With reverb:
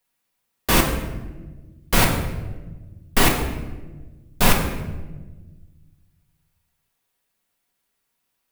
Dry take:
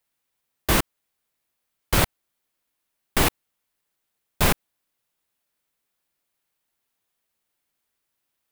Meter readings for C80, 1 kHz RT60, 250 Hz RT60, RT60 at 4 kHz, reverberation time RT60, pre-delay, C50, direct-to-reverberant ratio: 8.0 dB, 1.0 s, 2.0 s, 0.80 s, 1.3 s, 4 ms, 5.5 dB, −0.5 dB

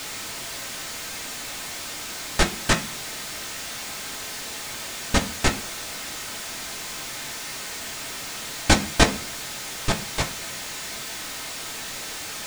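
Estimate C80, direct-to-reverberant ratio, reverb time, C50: 19.5 dB, 1.0 dB, 0.45 s, 14.0 dB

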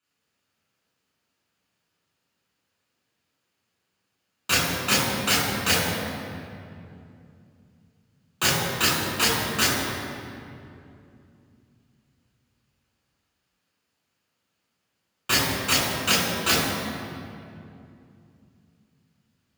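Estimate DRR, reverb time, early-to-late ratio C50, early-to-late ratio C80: −6.0 dB, 2.6 s, −1.0 dB, 1.0 dB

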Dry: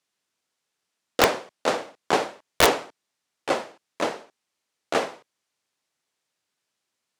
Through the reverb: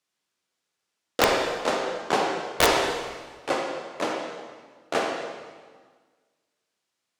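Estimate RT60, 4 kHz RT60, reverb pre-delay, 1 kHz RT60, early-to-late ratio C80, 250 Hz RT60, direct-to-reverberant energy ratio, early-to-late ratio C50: 1.6 s, 1.4 s, 33 ms, 1.5 s, 3.5 dB, 1.8 s, 0.5 dB, 2.0 dB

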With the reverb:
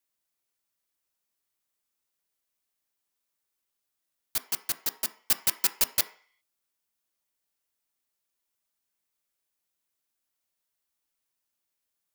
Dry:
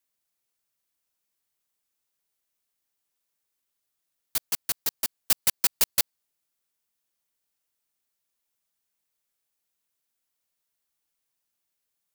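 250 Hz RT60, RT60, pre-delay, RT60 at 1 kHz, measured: 0.35 s, 0.45 s, 3 ms, 0.50 s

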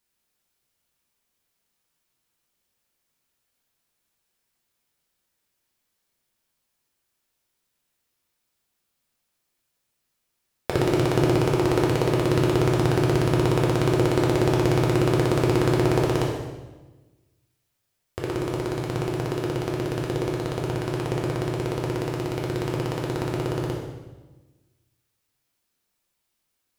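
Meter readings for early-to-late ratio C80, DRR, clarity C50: 4.5 dB, −3.0 dB, 2.0 dB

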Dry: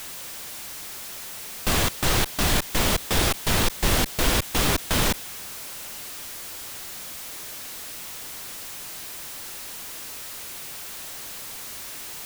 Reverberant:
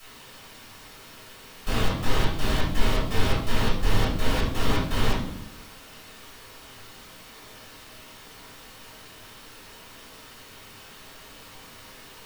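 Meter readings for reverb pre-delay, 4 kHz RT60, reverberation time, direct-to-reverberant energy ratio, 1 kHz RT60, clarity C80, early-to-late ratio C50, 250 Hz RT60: 3 ms, 0.50 s, 0.75 s, −11.5 dB, 0.70 s, 7.0 dB, 2.5 dB, 1.2 s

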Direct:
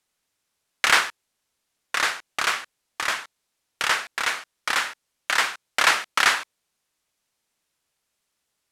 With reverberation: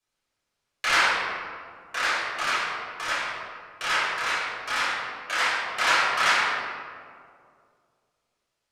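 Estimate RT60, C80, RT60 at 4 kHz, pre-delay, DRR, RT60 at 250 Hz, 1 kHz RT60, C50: 2.2 s, 0.5 dB, 1.1 s, 6 ms, −11.0 dB, 2.5 s, 2.0 s, −2.0 dB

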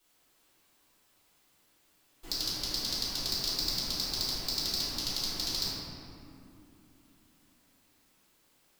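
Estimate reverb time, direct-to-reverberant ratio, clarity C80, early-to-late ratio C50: 2.9 s, −10.0 dB, −0.5 dB, −3.0 dB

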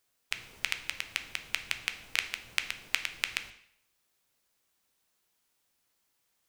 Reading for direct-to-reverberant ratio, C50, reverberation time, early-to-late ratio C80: 7.5 dB, 12.0 dB, 0.65 s, 15.0 dB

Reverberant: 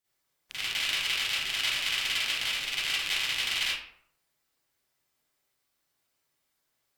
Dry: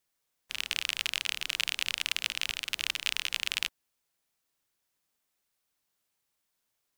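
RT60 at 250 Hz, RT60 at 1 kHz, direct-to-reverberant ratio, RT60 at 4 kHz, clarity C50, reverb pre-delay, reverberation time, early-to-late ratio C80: 0.65 s, 0.65 s, −11.5 dB, 0.40 s, −4.0 dB, 38 ms, 0.65 s, 3.5 dB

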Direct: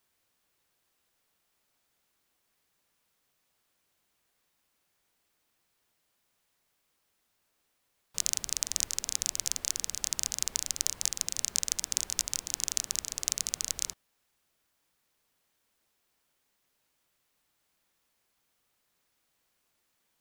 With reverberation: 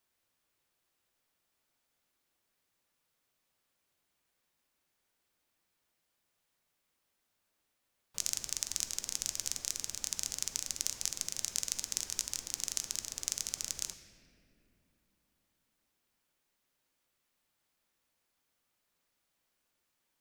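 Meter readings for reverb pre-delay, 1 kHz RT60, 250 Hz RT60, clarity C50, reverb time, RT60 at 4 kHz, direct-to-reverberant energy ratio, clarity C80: 3 ms, 2.2 s, 4.4 s, 9.5 dB, 2.7 s, 1.6 s, 7.5 dB, 10.5 dB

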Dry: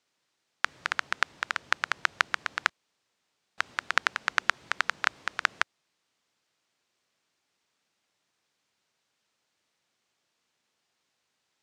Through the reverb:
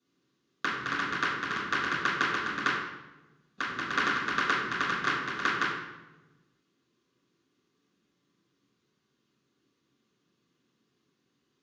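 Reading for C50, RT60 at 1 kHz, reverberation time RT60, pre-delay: 0.5 dB, 0.95 s, 1.1 s, 3 ms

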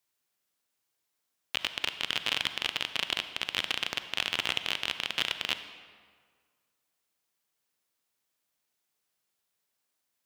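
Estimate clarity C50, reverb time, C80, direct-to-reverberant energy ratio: 10.5 dB, 1.7 s, 12.0 dB, 10.0 dB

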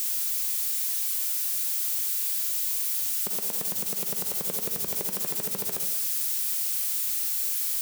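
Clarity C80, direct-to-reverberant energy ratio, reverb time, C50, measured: 9.5 dB, 4.5 dB, 0.75 s, 6.0 dB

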